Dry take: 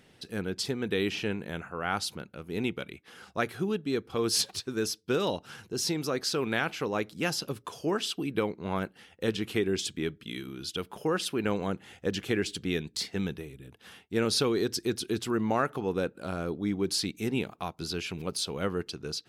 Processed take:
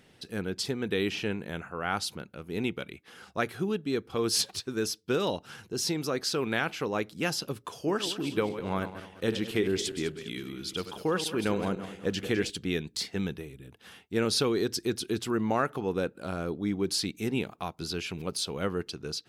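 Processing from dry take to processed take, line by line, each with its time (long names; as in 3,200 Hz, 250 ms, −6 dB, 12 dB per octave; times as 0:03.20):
0:07.78–0:12.50: feedback delay that plays each chunk backwards 102 ms, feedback 57%, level −10 dB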